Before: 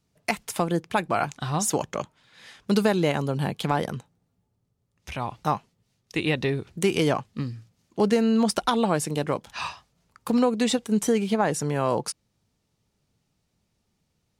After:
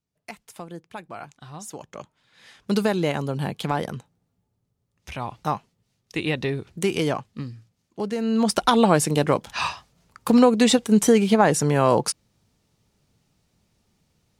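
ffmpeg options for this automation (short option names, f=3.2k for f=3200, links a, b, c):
-af "volume=12.5dB,afade=t=in:st=1.77:d=0.97:silence=0.237137,afade=t=out:st=6.9:d=1.23:silence=0.473151,afade=t=in:st=8.13:d=0.67:silence=0.223872"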